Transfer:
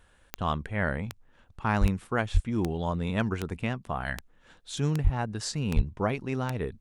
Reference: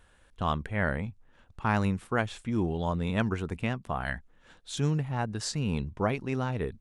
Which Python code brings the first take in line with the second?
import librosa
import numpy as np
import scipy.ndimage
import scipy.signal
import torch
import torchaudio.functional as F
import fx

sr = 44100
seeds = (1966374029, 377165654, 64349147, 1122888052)

y = fx.fix_declip(x, sr, threshold_db=-13.0)
y = fx.fix_declick_ar(y, sr, threshold=10.0)
y = fx.fix_deplosive(y, sr, at_s=(1.8, 2.33, 5.03, 5.75))